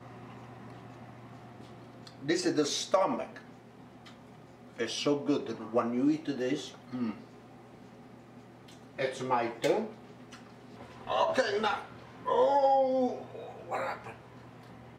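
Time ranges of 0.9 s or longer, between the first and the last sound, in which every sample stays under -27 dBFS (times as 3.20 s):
3.22–4.80 s
7.10–9.00 s
9.82–11.10 s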